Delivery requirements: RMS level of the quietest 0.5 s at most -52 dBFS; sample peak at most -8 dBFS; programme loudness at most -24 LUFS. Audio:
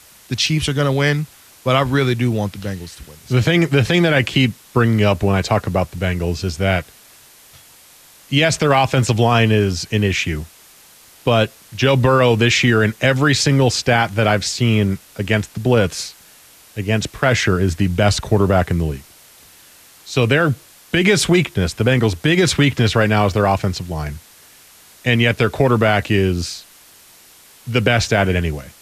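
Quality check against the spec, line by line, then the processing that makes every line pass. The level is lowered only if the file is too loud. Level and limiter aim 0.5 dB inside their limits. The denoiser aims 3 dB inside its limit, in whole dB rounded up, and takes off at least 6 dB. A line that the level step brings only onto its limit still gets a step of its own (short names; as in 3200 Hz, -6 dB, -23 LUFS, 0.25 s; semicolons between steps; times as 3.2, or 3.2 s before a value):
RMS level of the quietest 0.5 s -47 dBFS: fail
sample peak -4.0 dBFS: fail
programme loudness -17.0 LUFS: fail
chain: gain -7.5 dB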